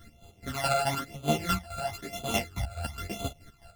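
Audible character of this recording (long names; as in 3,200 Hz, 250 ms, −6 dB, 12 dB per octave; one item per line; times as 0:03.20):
a buzz of ramps at a fixed pitch in blocks of 64 samples
phaser sweep stages 12, 1 Hz, lowest notch 320–1,800 Hz
chopped level 4.7 Hz, depth 65%, duty 40%
a shimmering, thickened sound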